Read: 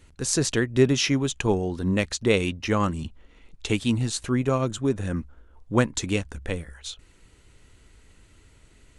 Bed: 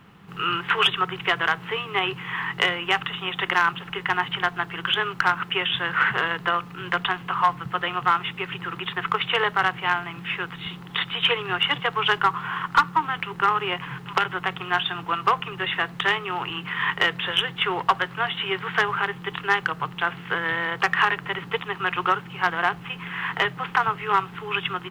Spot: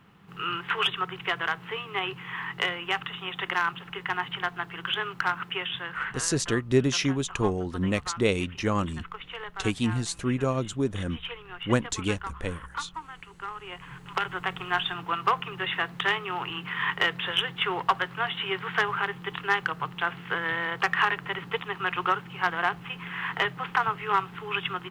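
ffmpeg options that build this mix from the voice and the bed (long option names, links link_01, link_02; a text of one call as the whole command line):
ffmpeg -i stem1.wav -i stem2.wav -filter_complex "[0:a]adelay=5950,volume=-3dB[link_01];[1:a]volume=7dB,afade=type=out:start_time=5.44:duration=0.89:silence=0.298538,afade=type=in:start_time=13.61:duration=0.89:silence=0.223872[link_02];[link_01][link_02]amix=inputs=2:normalize=0" out.wav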